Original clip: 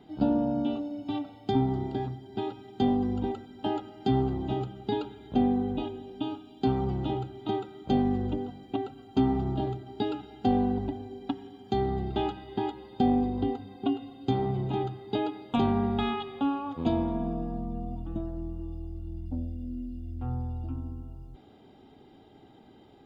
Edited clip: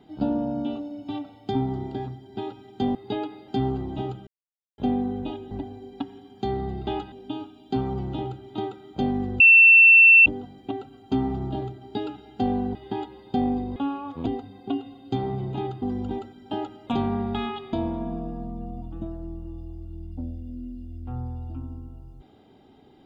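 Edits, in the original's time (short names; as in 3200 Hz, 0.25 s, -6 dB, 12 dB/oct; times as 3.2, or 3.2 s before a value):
2.95–4 swap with 14.98–15.51
4.79–5.3 mute
8.31 add tone 2690 Hz -9 dBFS 0.86 s
10.8–12.41 move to 6.03
16.37–16.87 move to 13.42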